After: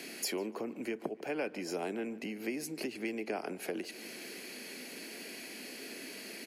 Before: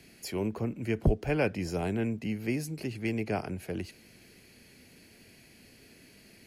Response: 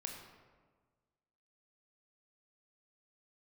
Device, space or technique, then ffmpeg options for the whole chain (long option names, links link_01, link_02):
serial compression, peaks first: -filter_complex "[0:a]acompressor=threshold=-40dB:ratio=4,acompressor=threshold=-53dB:ratio=1.5,highpass=frequency=250:width=0.5412,highpass=frequency=250:width=1.3066,asplit=2[link_01][link_02];[link_02]adelay=147,lowpass=frequency=2900:poles=1,volume=-18dB,asplit=2[link_03][link_04];[link_04]adelay=147,lowpass=frequency=2900:poles=1,volume=0.55,asplit=2[link_05][link_06];[link_06]adelay=147,lowpass=frequency=2900:poles=1,volume=0.55,asplit=2[link_07][link_08];[link_08]adelay=147,lowpass=frequency=2900:poles=1,volume=0.55,asplit=2[link_09][link_10];[link_10]adelay=147,lowpass=frequency=2900:poles=1,volume=0.55[link_11];[link_01][link_03][link_05][link_07][link_09][link_11]amix=inputs=6:normalize=0,volume=12.5dB"